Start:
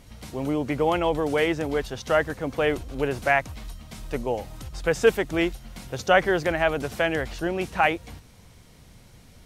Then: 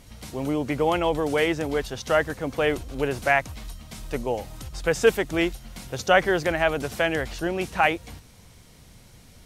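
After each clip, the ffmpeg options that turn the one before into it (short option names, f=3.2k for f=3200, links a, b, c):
-af "equalizer=f=10k:w=0.31:g=3.5"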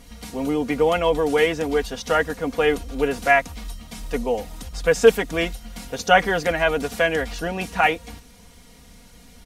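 -af "aecho=1:1:4.2:0.75,volume=1dB"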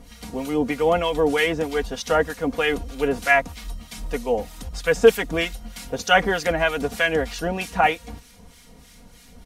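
-filter_complex "[0:a]acrossover=split=1200[a][b];[a]aeval=exprs='val(0)*(1-0.7/2+0.7/2*cos(2*PI*3.2*n/s))':c=same[c];[b]aeval=exprs='val(0)*(1-0.7/2-0.7/2*cos(2*PI*3.2*n/s))':c=same[d];[c][d]amix=inputs=2:normalize=0,volume=3dB"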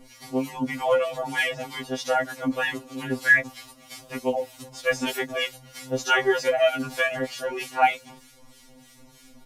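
-af "afftfilt=real='re*2.45*eq(mod(b,6),0)':imag='im*2.45*eq(mod(b,6),0)':win_size=2048:overlap=0.75"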